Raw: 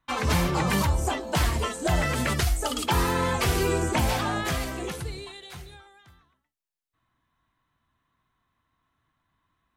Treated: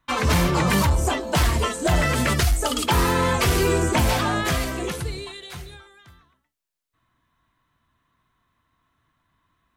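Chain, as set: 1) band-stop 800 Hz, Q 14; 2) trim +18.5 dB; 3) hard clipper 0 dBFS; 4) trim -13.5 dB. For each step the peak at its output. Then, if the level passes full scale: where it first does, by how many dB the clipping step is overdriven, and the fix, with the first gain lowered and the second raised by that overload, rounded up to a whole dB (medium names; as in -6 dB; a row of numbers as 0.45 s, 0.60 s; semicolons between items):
-11.5 dBFS, +7.0 dBFS, 0.0 dBFS, -13.5 dBFS; step 2, 7.0 dB; step 2 +11.5 dB, step 4 -6.5 dB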